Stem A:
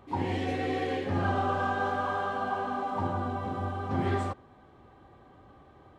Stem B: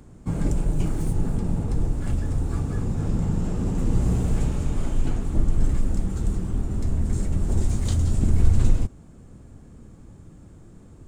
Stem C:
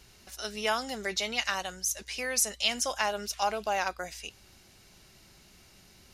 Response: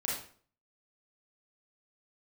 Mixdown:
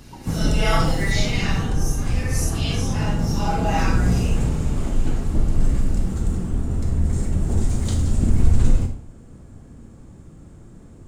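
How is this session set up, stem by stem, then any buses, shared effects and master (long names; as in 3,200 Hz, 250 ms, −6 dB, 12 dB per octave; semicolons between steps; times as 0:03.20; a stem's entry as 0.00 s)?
−4.5 dB, 0.00 s, no send, automatic ducking −9 dB, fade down 0.20 s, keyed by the third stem
−1.5 dB, 0.00 s, send −5 dB, no processing
0:01.12 −0.5 dB → 0:01.75 −9 dB → 0:03.26 −9 dB → 0:03.66 −2 dB, 0.00 s, send −5 dB, random phases in long frames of 200 ms; comb filter 6.1 ms, depth 89%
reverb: on, RT60 0.50 s, pre-delay 30 ms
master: no processing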